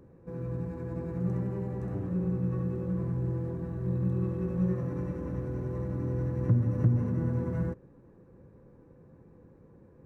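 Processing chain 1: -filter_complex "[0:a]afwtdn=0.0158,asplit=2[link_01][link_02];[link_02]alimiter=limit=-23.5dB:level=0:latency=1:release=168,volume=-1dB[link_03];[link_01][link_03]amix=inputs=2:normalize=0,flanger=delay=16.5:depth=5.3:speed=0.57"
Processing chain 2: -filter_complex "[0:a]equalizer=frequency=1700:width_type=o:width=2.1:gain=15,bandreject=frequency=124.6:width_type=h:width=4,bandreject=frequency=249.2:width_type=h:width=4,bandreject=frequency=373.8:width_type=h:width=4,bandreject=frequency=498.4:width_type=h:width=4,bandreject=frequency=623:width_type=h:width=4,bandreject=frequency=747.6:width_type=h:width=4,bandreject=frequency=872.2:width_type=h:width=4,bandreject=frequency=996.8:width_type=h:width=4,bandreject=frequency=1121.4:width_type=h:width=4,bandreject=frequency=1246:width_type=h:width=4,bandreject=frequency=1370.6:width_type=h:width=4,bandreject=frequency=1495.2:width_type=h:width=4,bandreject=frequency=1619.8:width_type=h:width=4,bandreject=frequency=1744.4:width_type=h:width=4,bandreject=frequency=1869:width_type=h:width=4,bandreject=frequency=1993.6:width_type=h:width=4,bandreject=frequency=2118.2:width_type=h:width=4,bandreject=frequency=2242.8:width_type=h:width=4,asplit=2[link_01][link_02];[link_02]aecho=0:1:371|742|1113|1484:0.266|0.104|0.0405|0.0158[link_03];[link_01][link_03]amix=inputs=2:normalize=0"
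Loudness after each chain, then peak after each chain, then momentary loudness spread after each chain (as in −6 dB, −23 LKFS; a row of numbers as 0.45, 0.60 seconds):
−30.0, −32.0 LKFS; −12.5, −13.5 dBFS; 10, 13 LU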